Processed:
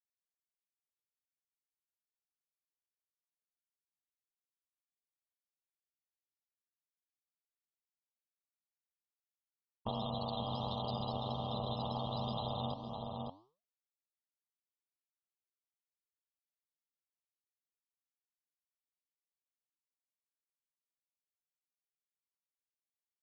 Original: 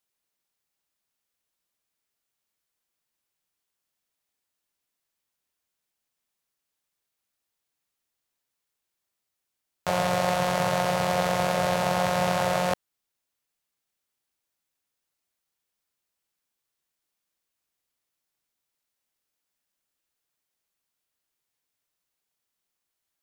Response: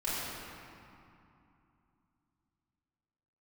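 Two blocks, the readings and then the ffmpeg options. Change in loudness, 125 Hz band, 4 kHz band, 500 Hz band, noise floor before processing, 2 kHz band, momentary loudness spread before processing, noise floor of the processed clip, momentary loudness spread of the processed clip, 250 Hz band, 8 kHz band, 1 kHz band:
-14.0 dB, -8.0 dB, -9.0 dB, -16.0 dB, -84 dBFS, -36.0 dB, 4 LU, under -85 dBFS, 5 LU, -10.5 dB, under -35 dB, -14.0 dB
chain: -filter_complex "[0:a]aecho=1:1:2.5:0.47,afftfilt=real='re*gte(hypot(re,im),0.0447)':imag='im*gte(hypot(re,im),0.0447)':win_size=1024:overlap=0.75,alimiter=limit=-21.5dB:level=0:latency=1:release=440,firequalizer=gain_entry='entry(110,0);entry(190,8);entry(300,-6);entry(4500,14);entry(6800,-16);entry(10000,-2)':delay=0.05:min_phase=1,aeval=exprs='val(0)*sin(2*PI*53*n/s)':c=same,flanger=delay=4:depth=9.3:regen=88:speed=1.3:shape=triangular,asuperstop=centerf=1900:order=12:qfactor=1,highshelf=f=8.4k:g=6.5,asplit=2[a][b];[b]adelay=559.8,volume=-11dB,highshelf=f=4k:g=-12.6[c];[a][c]amix=inputs=2:normalize=0,acompressor=threshold=-52dB:ratio=3,volume=14dB"

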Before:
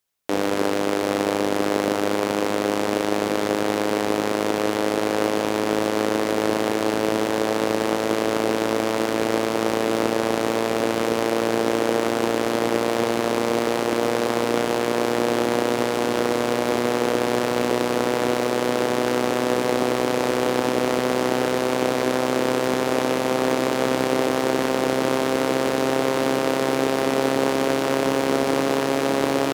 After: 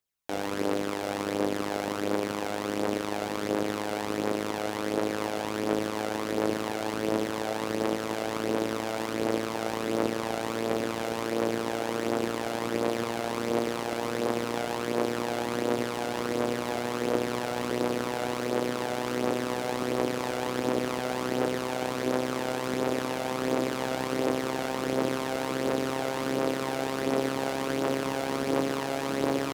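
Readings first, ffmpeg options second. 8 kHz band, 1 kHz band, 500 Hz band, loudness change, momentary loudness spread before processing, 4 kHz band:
-7.5 dB, -7.5 dB, -8.5 dB, -8.0 dB, 1 LU, -8.0 dB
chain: -af "aphaser=in_gain=1:out_gain=1:delay=1.5:decay=0.41:speed=1.4:type=triangular,volume=-8.5dB"

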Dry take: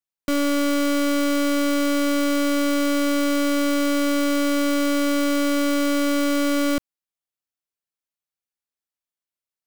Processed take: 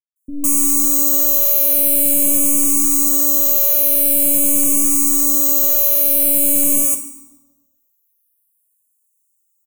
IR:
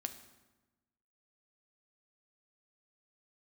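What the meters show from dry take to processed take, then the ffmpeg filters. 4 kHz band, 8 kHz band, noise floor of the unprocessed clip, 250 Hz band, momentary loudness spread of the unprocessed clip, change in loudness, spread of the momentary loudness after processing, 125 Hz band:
-5.0 dB, +18.0 dB, under -85 dBFS, -5.0 dB, 0 LU, +10.0 dB, 1 LU, n/a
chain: -filter_complex "[0:a]asuperstop=centerf=1700:order=8:qfactor=1.3,aecho=1:1:7.5:0.68,acrossover=split=330[a][b];[b]adelay=160[c];[a][c]amix=inputs=2:normalize=0,dynaudnorm=f=200:g=3:m=9dB,lowshelf=f=230:g=6[d];[1:a]atrim=start_sample=2205[e];[d][e]afir=irnorm=-1:irlink=0,aexciter=amount=13:drive=7.7:freq=7.3k,equalizer=f=1k:t=o:w=0.67:g=6,equalizer=f=6.3k:t=o:w=0.67:g=7,equalizer=f=16k:t=o:w=0.67:g=4,asplit=2[f][g];[g]afreqshift=-0.46[h];[f][h]amix=inputs=2:normalize=1,volume=-8dB"

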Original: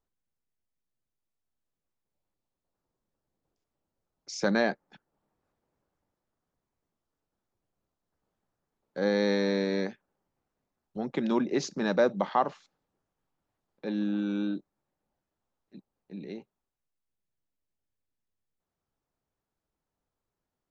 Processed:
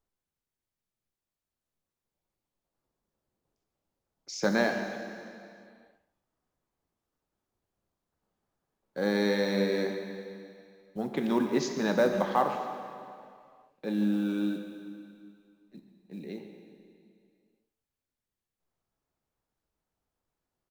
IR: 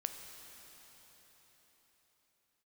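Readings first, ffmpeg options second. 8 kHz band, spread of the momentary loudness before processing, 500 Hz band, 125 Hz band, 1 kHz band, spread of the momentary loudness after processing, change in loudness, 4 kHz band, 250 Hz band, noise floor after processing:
n/a, 18 LU, 0.0 dB, +0.5 dB, +0.5 dB, 19 LU, -0.5 dB, +0.5 dB, +0.5 dB, under -85 dBFS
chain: -filter_complex "[0:a]acrusher=bits=8:mode=log:mix=0:aa=0.000001,asplit=2[a][b];[b]adelay=140,highpass=300,lowpass=3.4k,asoftclip=type=hard:threshold=-21.5dB,volume=-12dB[c];[a][c]amix=inputs=2:normalize=0[d];[1:a]atrim=start_sample=2205,asetrate=88200,aresample=44100[e];[d][e]afir=irnorm=-1:irlink=0,volume=7dB"

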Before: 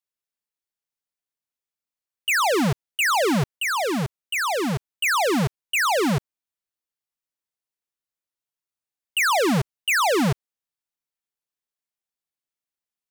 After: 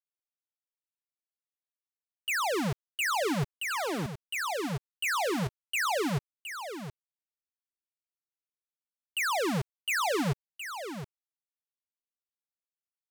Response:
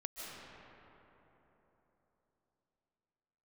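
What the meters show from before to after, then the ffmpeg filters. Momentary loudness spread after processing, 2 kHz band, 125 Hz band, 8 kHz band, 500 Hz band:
11 LU, -8.5 dB, -7.5 dB, -8.0 dB, -8.5 dB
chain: -af "equalizer=f=240:w=6.3:g=-4.5,acrusher=bits=5:mix=0:aa=0.5,aecho=1:1:717:0.335,volume=-8.5dB"

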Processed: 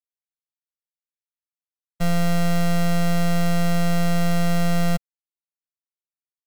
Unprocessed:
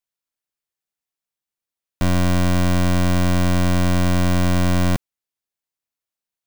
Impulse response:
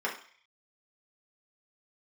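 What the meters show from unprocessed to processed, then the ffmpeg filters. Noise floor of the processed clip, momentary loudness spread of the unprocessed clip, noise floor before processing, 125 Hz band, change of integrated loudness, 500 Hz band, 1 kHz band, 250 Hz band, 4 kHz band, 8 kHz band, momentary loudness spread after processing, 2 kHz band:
under -85 dBFS, 3 LU, under -85 dBFS, -4.5 dB, -3.5 dB, -1.5 dB, -2.5 dB, -2.5 dB, -3.0 dB, -2.5 dB, 3 LU, -3.0 dB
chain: -af "acrusher=bits=6:dc=4:mix=0:aa=0.000001,afftfilt=real='hypot(re,im)*cos(PI*b)':imag='0':win_size=1024:overlap=0.75,aecho=1:1:1.5:0.74"

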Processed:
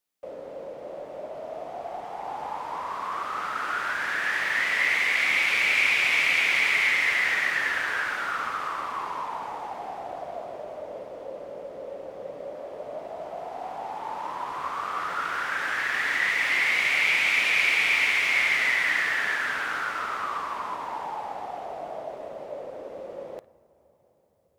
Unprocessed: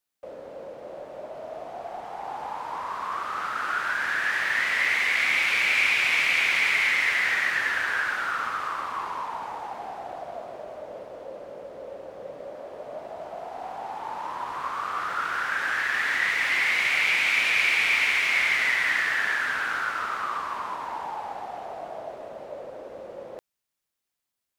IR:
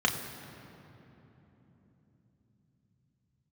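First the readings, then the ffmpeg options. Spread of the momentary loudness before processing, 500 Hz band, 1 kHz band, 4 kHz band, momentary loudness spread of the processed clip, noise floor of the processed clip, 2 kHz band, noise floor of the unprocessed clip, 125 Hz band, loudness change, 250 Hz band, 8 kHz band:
20 LU, +1.5 dB, -0.5 dB, 0.0 dB, 19 LU, -60 dBFS, -0.5 dB, -84 dBFS, n/a, -0.5 dB, +1.0 dB, -0.5 dB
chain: -filter_complex "[0:a]asplit=2[a][b];[1:a]atrim=start_sample=2205,asetrate=25578,aresample=44100[c];[b][c]afir=irnorm=-1:irlink=0,volume=-27dB[d];[a][d]amix=inputs=2:normalize=0"

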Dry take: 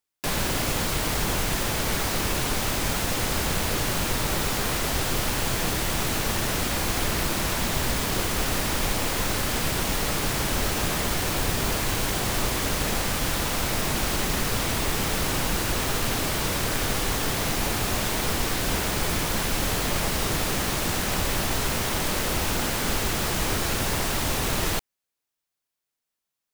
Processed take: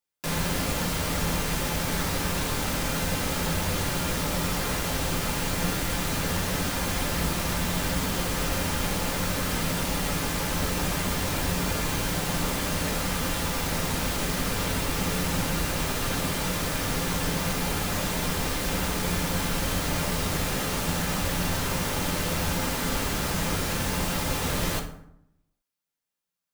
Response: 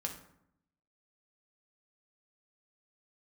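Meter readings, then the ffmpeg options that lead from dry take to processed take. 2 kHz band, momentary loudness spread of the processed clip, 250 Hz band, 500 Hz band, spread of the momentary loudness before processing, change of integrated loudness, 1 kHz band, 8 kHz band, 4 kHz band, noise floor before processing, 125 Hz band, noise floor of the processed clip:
-2.5 dB, 1 LU, +0.5 dB, -1.5 dB, 0 LU, -2.0 dB, -2.0 dB, -3.0 dB, -3.0 dB, -85 dBFS, 0.0 dB, -72 dBFS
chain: -filter_complex "[1:a]atrim=start_sample=2205[a];[0:a][a]afir=irnorm=-1:irlink=0,volume=-2.5dB"

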